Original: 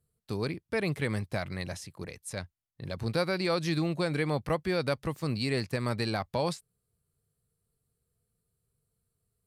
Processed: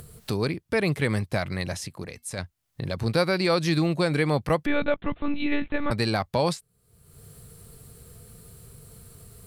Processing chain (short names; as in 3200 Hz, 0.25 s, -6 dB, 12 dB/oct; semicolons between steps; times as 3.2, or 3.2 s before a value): upward compressor, threshold -32 dBFS; 1.88–2.39 resonator 240 Hz, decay 0.21 s, harmonics odd, mix 40%; 4.66–5.91 monotone LPC vocoder at 8 kHz 290 Hz; gain +6 dB